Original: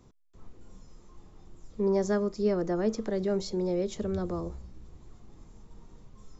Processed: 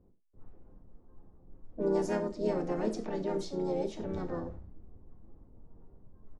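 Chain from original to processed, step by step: harmoniser -3 st -8 dB, +3 st -12 dB, +7 st -7 dB; low-pass opened by the level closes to 520 Hz, open at -22 dBFS; non-linear reverb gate 0.13 s falling, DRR 6 dB; gain -6.5 dB

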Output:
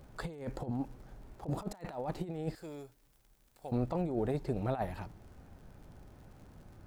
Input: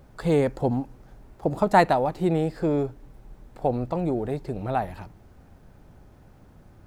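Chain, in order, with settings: 2.55–3.72 pre-emphasis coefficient 0.9; negative-ratio compressor -27 dBFS, ratio -0.5; crackle 76/s -45 dBFS; gain -7.5 dB

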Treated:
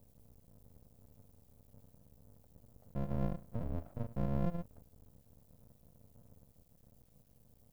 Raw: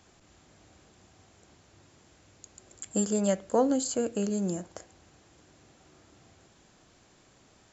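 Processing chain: FFT order left unsorted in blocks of 128 samples; limiter -21.5 dBFS, peak gain reduction 8.5 dB; inverse Chebyshev low-pass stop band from 2000 Hz, stop band 60 dB; added noise violet -77 dBFS; half-wave rectifier; gain +7 dB

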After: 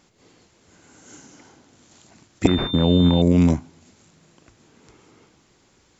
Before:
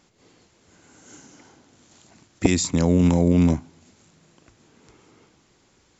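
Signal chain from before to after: 2.47–3.22 pulse-width modulation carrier 3600 Hz; gain +1.5 dB

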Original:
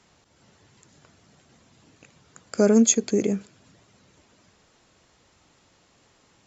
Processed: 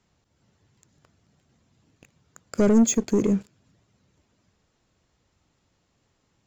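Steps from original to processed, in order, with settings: dynamic EQ 4400 Hz, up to -5 dB, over -46 dBFS, Q 1.1; sample leveller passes 2; low shelf 210 Hz +10 dB; gain -8 dB

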